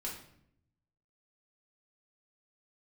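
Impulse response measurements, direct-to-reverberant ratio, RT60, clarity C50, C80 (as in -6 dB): -4.5 dB, 0.70 s, 5.5 dB, 9.5 dB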